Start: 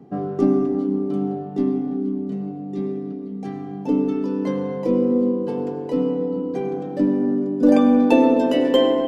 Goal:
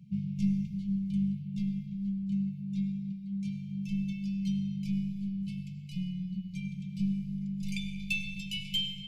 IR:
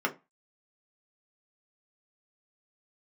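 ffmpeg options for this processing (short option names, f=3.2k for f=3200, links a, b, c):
-af "aeval=exprs='0.708*(cos(1*acos(clip(val(0)/0.708,-1,1)))-cos(1*PI/2))+0.0141*(cos(6*acos(clip(val(0)/0.708,-1,1)))-cos(6*PI/2))':c=same,afftfilt=real='re*(1-between(b*sr/4096,210,2100))':imag='im*(1-between(b*sr/4096,210,2100))':win_size=4096:overlap=0.75,volume=-2dB"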